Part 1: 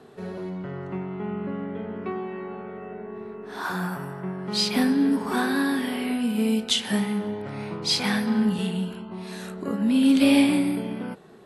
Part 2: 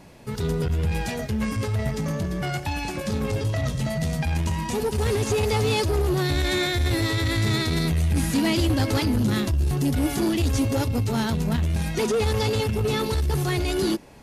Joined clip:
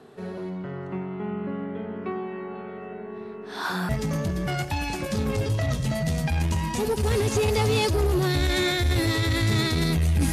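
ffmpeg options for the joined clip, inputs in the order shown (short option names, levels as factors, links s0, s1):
-filter_complex "[0:a]asettb=1/sr,asplit=3[s0][s1][s2];[s0]atrim=end=2.554[s3];[s1]atrim=start=2.55:end=3.89,asetpts=PTS-STARTPTS,afade=t=in:d=0.004:c=qsin,afade=t=out:st=1.336:d=0.004:c=qsin,equalizer=f=4300:w=0.99:g=7[s4];[s2]atrim=start=3.886[s5];[s3][s4]acrossfade=d=0.004:c1=hsin:c2=qsin[s6];[s6][s5]acrossfade=d=0.004:c1=qsin:c2=hsin,apad=whole_dur=10.32,atrim=end=10.32,atrim=end=3.892[s7];[1:a]atrim=start=1.838:end=8.27[s8];[s7][s8]acrossfade=d=0.004:c1=hsin:c2=hsin"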